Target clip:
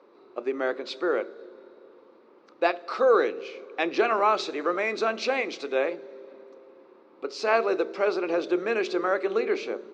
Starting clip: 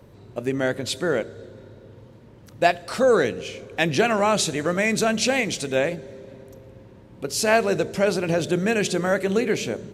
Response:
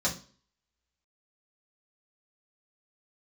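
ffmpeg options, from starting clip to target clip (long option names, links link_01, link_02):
-filter_complex "[0:a]highpass=frequency=340:width=0.5412,highpass=frequency=340:width=1.3066,equalizer=frequency=360:width_type=q:width=4:gain=3,equalizer=frequency=650:width_type=q:width=4:gain=-3,equalizer=frequency=1200:width_type=q:width=4:gain=8,equalizer=frequency=1800:width_type=q:width=4:gain=-6,equalizer=frequency=3100:width_type=q:width=4:gain=-9,lowpass=frequency=4200:width=0.5412,lowpass=frequency=4200:width=1.3066,asplit=2[link_01][link_02];[1:a]atrim=start_sample=2205,asetrate=57330,aresample=44100[link_03];[link_02][link_03]afir=irnorm=-1:irlink=0,volume=-19dB[link_04];[link_01][link_04]amix=inputs=2:normalize=0,volume=-3dB"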